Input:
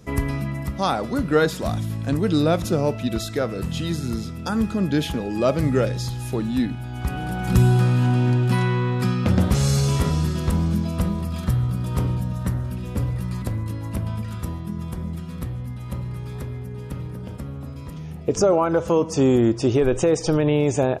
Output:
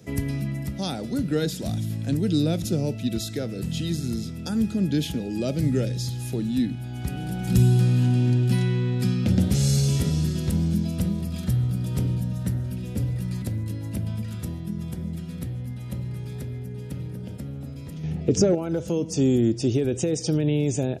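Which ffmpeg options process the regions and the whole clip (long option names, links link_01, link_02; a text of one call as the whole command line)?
ffmpeg -i in.wav -filter_complex "[0:a]asettb=1/sr,asplit=3[link_01][link_02][link_03];[link_01]atrim=end=18.034[link_04];[link_02]atrim=start=18.03:end=18.55,asetpts=PTS-STARTPTS,afade=type=in:duration=0.004:curve=qsin,afade=type=out:start_time=0.516:duration=0.004:curve=qsin,lowpass=10000,highshelf=frequency=6300:gain=-11,acontrast=86[link_05];[link_03]atrim=start=18.546[link_06];[link_04][link_05]acrossfade=duration=0.004:curve1=hsin:curve2=qsin[link_07];[link_07][link_06]acrossfade=duration=0.004:curve1=qsin:curve2=hsin,highpass=91,equalizer=frequency=1100:width=3.1:gain=-12.5,acrossover=split=340|3000[link_08][link_09][link_10];[link_09]acompressor=threshold=-53dB:ratio=1.5[link_11];[link_08][link_11][link_10]amix=inputs=3:normalize=0" out.wav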